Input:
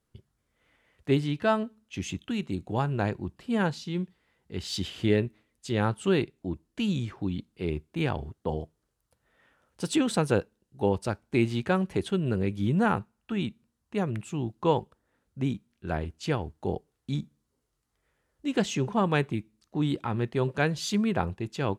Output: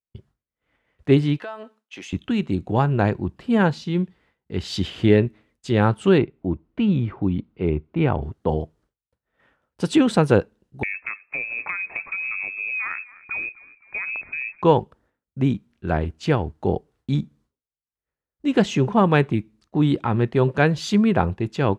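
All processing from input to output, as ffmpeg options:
-filter_complex "[0:a]asettb=1/sr,asplit=3[s0][s1][s2];[s0]atrim=end=1.384[s3];[s1]atrim=start=1.38:end=2.13,asetpts=PTS-STARTPTS,afade=t=in:d=0.004:c=qsin,afade=t=out:st=0.746:d=0.004:c=qsin,highpass=570,acompressor=threshold=0.0112:ratio=5:attack=3.2:release=140:knee=1:detection=peak[s4];[s2]atrim=start=2.126[s5];[s3][s4]acrossfade=d=0.004:c1=hsin:c2=qsin[s6];[s6][s5]acrossfade=d=0.004:c1=qsin:c2=hsin,asettb=1/sr,asplit=3[s7][s8][s9];[s7]atrim=end=6.184[s10];[s8]atrim=start=6.18:end=8.22,asetpts=PTS-STARTPTS,afade=t=in:d=0.004:c=qsin,afade=t=out:st=2.036:d=0.004:c=qsin,lowpass=2300,bandreject=f=1700:w=8.7[s11];[s9]atrim=start=8.216[s12];[s10][s11]acrossfade=d=0.004:c1=hsin:c2=qsin[s13];[s13][s12]acrossfade=d=0.004:c1=qsin:c2=hsin,asettb=1/sr,asplit=3[s14][s15][s16];[s14]atrim=end=10.834[s17];[s15]atrim=start=10.83:end=14.62,asetpts=PTS-STARTPTS,afade=t=in:d=0.004:c=qsin,afade=t=out:st=3.786:d=0.004:c=qsin,lowpass=f=2300:t=q:w=0.5098,lowpass=f=2300:t=q:w=0.6013,lowpass=f=2300:t=q:w=0.9,lowpass=f=2300:t=q:w=2.563,afreqshift=-2700,acompressor=threshold=0.0282:ratio=5:attack=3.2:release=140:knee=1:detection=peak,asplit=5[s18][s19][s20][s21][s22];[s19]adelay=256,afreqshift=-49,volume=0.1[s23];[s20]adelay=512,afreqshift=-98,volume=0.0513[s24];[s21]adelay=768,afreqshift=-147,volume=0.026[s25];[s22]adelay=1024,afreqshift=-196,volume=0.0133[s26];[s18][s23][s24][s25][s26]amix=inputs=5:normalize=0,atrim=end_sample=167139[s27];[s16]atrim=start=14.616[s28];[s17][s27]acrossfade=d=0.004:c1=hsin:c2=qsin[s29];[s29][s28]acrossfade=d=0.004:c1=qsin:c2=hsin,acontrast=26,agate=range=0.0224:threshold=0.002:ratio=3:detection=peak,lowpass=f=2600:p=1,volume=1.5"

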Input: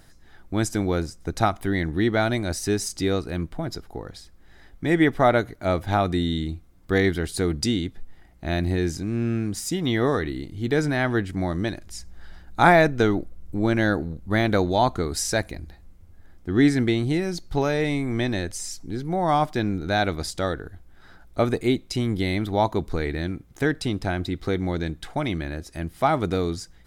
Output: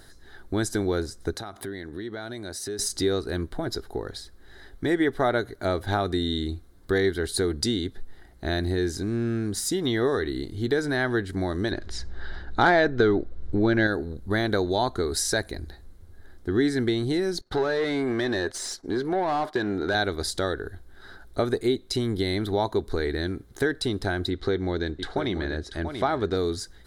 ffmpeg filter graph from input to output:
-filter_complex "[0:a]asettb=1/sr,asplit=3[s0][s1][s2];[s0]atrim=end=1.354[s3];[s1]atrim=start=1.35:end=2.79,asetpts=PTS-STARTPTS,afade=t=in:d=0.004:c=qsin,afade=t=out:st=1.436:d=0.004:c=qsin,highpass=99,acompressor=threshold=0.02:ratio=12:attack=3.2:release=140:knee=1:detection=peak[s4];[s2]atrim=start=2.786[s5];[s3][s4]acrossfade=d=0.004:c1=hsin:c2=qsin[s6];[s6][s5]acrossfade=d=0.004:c1=qsin:c2=hsin,asettb=1/sr,asplit=3[s7][s8][s9];[s7]atrim=end=11.714[s10];[s8]atrim=start=11.71:end=13.87,asetpts=PTS-STARTPTS,afade=t=in:d=0.004:c=qsin,afade=t=out:st=2.156:d=0.004:c=qsin,lowpass=3900,acontrast=62[s11];[s9]atrim=start=13.866[s12];[s10][s11]acrossfade=d=0.004:c1=hsin:c2=qsin[s13];[s13][s12]acrossfade=d=0.004:c1=qsin:c2=hsin,asettb=1/sr,asplit=3[s14][s15][s16];[s14]atrim=end=17.414[s17];[s15]atrim=start=17.41:end=19.95,asetpts=PTS-STARTPTS,afade=t=in:d=0.004:c=qsin,afade=t=out:st=2.536:d=0.004:c=qsin,agate=range=0.0224:threshold=0.0355:ratio=3:release=100:detection=peak,acompressor=threshold=0.0126:ratio=2:attack=3.2:release=140:knee=1:detection=peak,asplit=2[s18][s19];[s19]highpass=f=720:p=1,volume=20,asoftclip=type=tanh:threshold=0.211[s20];[s18][s20]amix=inputs=2:normalize=0,lowpass=f=1500:p=1,volume=0.501[s21];[s16]atrim=start=19.946[s22];[s17][s21]acrossfade=d=0.004:c1=hsin:c2=qsin[s23];[s23][s22]acrossfade=d=0.004:c1=qsin:c2=hsin,asettb=1/sr,asplit=3[s24][s25][s26];[s24]atrim=end=24.304[s27];[s25]atrim=start=24.3:end=26.37,asetpts=PTS-STARTPTS,afade=t=in:d=0.004:c=qsin,afade=t=out:st=2.066:d=0.004:c=qsin,lowpass=5800,aecho=1:1:687:0.299,atrim=end_sample=91287[s28];[s26]atrim=start=26.366[s29];[s27][s28]acrossfade=d=0.004:c1=hsin:c2=qsin[s30];[s30][s29]acrossfade=d=0.004:c1=qsin:c2=hsin,equalizer=f=160:t=o:w=0.33:g=-8,equalizer=f=400:t=o:w=0.33:g=8,equalizer=f=1600:t=o:w=0.33:g=6,equalizer=f=2500:t=o:w=0.33:g=-8,equalizer=f=4000:t=o:w=0.33:g=8,equalizer=f=10000:t=o:w=0.33:g=5,acompressor=threshold=0.0447:ratio=2,volume=1.19"

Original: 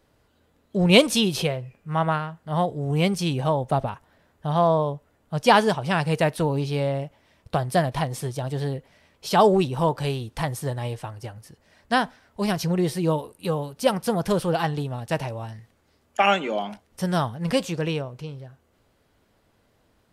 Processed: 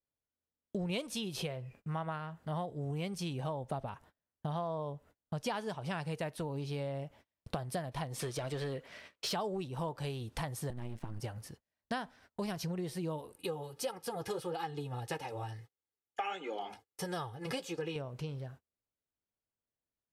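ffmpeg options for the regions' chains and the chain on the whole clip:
-filter_complex "[0:a]asettb=1/sr,asplit=3[s0][s1][s2];[s0]atrim=end=8.194[s3];[s1]atrim=start=8.19:end=9.33,asetpts=PTS-STARTPTS,afade=t=in:d=0.004:c=qsin,afade=t=out:st=1.136:d=0.004:c=qsin,asplit=2[s4][s5];[s5]highpass=f=720:p=1,volume=7.08,asoftclip=type=tanh:threshold=0.168[s6];[s4][s6]amix=inputs=2:normalize=0,lowpass=f=3900:p=1,volume=0.501,equalizer=f=830:t=o:w=0.44:g=-7[s7];[s2]atrim=start=9.326[s8];[s3][s7]acrossfade=d=0.004:c1=hsin:c2=qsin[s9];[s9][s8]acrossfade=d=0.004:c1=qsin:c2=hsin,asettb=1/sr,asplit=3[s10][s11][s12];[s10]atrim=end=10.704[s13];[s11]atrim=start=10.7:end=11.2,asetpts=PTS-STARTPTS,afade=t=in:d=0.004:c=qsin,afade=t=out:st=0.496:d=0.004:c=qsin,lowshelf=f=320:t=q:w=3:g=10.5,acrossover=split=360|2600[s14][s15][s16];[s14]acompressor=threshold=0.0282:ratio=4[s17];[s15]acompressor=threshold=0.0141:ratio=4[s18];[s16]acompressor=threshold=0.00126:ratio=4[s19];[s17][s18][s19]amix=inputs=3:normalize=0,aeval=exprs='max(val(0),0)':c=same[s20];[s12]atrim=start=11.196[s21];[s13][s20]acrossfade=d=0.004:c1=hsin:c2=qsin[s22];[s22][s21]acrossfade=d=0.004:c1=qsin:c2=hsin,asettb=1/sr,asplit=3[s23][s24][s25];[s23]atrim=end=13.364[s26];[s24]atrim=start=13.36:end=17.96,asetpts=PTS-STARTPTS,afade=t=in:d=0.004:c=qsin,afade=t=out:st=4.596:d=0.004:c=qsin,highpass=110,aecho=1:1:2.4:0.76,atrim=end_sample=202860,flanger=delay=3.6:depth=5.3:regen=-38:speed=1.6:shape=sinusoidal[s27];[s25]atrim=start=17.956[s28];[s26][s27]acrossfade=d=0.004:c1=hsin:c2=qsin[s29];[s29][s28]acrossfade=d=0.004:c1=qsin:c2=hsin,agate=range=0.0224:threshold=0.00355:ratio=16:detection=peak,acompressor=threshold=0.02:ratio=6,volume=0.841"

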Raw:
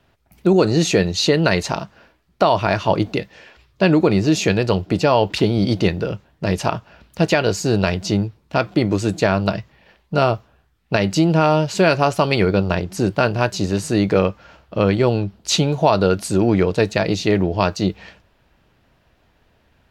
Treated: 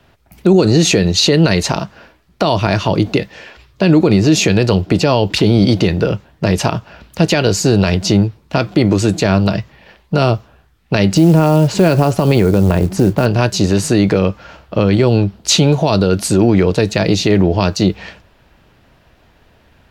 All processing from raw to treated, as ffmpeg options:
-filter_complex "[0:a]asettb=1/sr,asplit=3[s0][s1][s2];[s0]atrim=end=11.144[s3];[s1]atrim=start=11.14:end=13.26,asetpts=PTS-STARTPTS,afade=t=in:d=0.004:c=qsin,afade=t=out:st=2.116:d=0.004:c=qsin,acompressor=threshold=0.126:ratio=2:attack=3.2:release=140:knee=1:detection=peak,tiltshelf=f=1500:g=5.5,acrusher=bits=7:mode=log:mix=0:aa=0.000001[s4];[s2]atrim=start=13.256[s5];[s3][s4]acrossfade=d=0.004:c1=hsin:c2=qsin[s6];[s6][s5]acrossfade=d=0.004:c1=qsin:c2=hsin,acrossover=split=390|3000[s7][s8][s9];[s8]acompressor=threshold=0.0794:ratio=6[s10];[s7][s10][s9]amix=inputs=3:normalize=0,alimiter=level_in=2.99:limit=0.891:release=50:level=0:latency=1,volume=0.891"

